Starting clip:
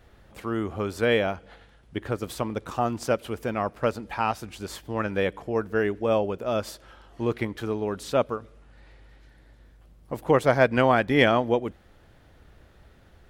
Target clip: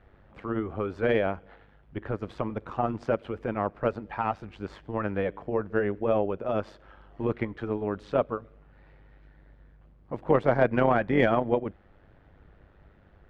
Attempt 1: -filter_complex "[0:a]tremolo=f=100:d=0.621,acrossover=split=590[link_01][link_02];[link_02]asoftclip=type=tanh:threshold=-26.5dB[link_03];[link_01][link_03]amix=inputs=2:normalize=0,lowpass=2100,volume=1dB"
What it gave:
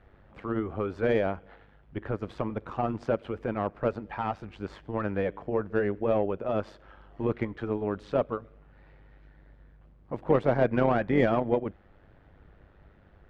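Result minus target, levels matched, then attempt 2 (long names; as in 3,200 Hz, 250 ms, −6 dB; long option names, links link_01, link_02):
soft clipping: distortion +9 dB
-filter_complex "[0:a]tremolo=f=100:d=0.621,acrossover=split=590[link_01][link_02];[link_02]asoftclip=type=tanh:threshold=-17.5dB[link_03];[link_01][link_03]amix=inputs=2:normalize=0,lowpass=2100,volume=1dB"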